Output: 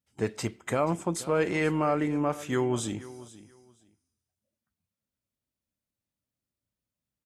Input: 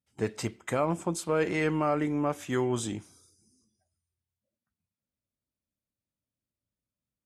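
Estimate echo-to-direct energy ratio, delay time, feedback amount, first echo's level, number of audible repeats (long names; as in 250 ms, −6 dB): −17.5 dB, 481 ms, 20%, −17.5 dB, 2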